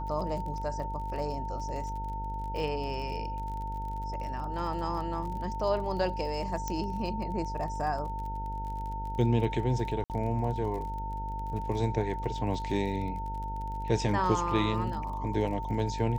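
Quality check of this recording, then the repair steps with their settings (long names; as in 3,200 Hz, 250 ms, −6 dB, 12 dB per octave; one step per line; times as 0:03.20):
mains buzz 50 Hz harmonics 20 −37 dBFS
surface crackle 37 per second −38 dBFS
whistle 900 Hz −36 dBFS
0:06.68: click −19 dBFS
0:10.04–0:10.10: drop-out 58 ms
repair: click removal
hum removal 50 Hz, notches 20
notch filter 900 Hz, Q 30
repair the gap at 0:10.04, 58 ms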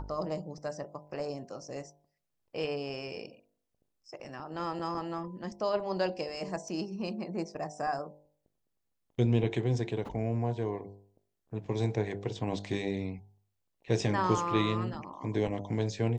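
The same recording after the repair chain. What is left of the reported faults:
0:06.68: click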